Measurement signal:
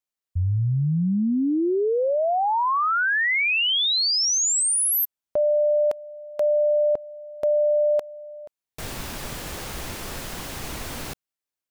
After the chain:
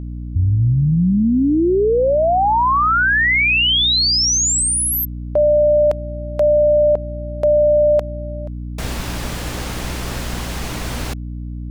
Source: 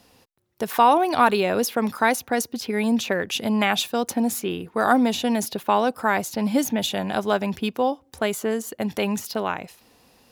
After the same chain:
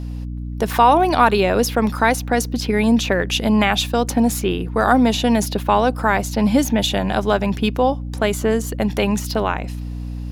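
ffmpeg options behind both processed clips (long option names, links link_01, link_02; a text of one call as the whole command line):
ffmpeg -i in.wav -filter_complex "[0:a]highshelf=frequency=11000:gain=-8.5,asplit=2[link_01][link_02];[link_02]alimiter=limit=-16dB:level=0:latency=1:release=297,volume=-0.5dB[link_03];[link_01][link_03]amix=inputs=2:normalize=0,aeval=exprs='val(0)+0.0447*(sin(2*PI*60*n/s)+sin(2*PI*2*60*n/s)/2+sin(2*PI*3*60*n/s)/3+sin(2*PI*4*60*n/s)/4+sin(2*PI*5*60*n/s)/5)':channel_layout=same,volume=1dB" out.wav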